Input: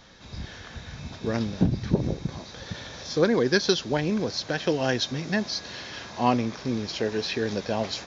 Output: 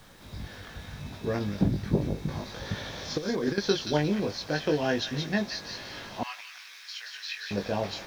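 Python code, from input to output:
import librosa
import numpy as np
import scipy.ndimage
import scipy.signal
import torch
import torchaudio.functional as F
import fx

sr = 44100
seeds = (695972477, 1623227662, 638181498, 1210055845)

y = fx.doubler(x, sr, ms=20.0, db=-4)
y = fx.over_compress(y, sr, threshold_db=-24.0, ratio=-0.5, at=(2.28, 3.58))
y = fx.high_shelf(y, sr, hz=4400.0, db=-9.0)
y = fx.dmg_noise_colour(y, sr, seeds[0], colour='pink', level_db=-54.0)
y = fx.highpass(y, sr, hz=1500.0, slope=24, at=(6.23, 7.51))
y = fx.echo_wet_highpass(y, sr, ms=176, feedback_pct=35, hz=2200.0, wet_db=-4.0)
y = F.gain(torch.from_numpy(y), -3.0).numpy()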